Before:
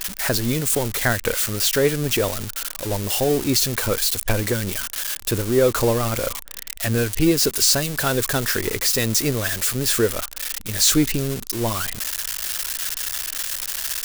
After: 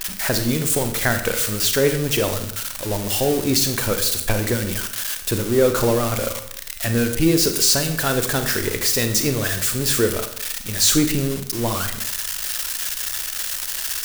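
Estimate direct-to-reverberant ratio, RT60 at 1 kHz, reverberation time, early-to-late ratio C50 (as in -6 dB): 7.0 dB, 0.65 s, 0.70 s, 9.0 dB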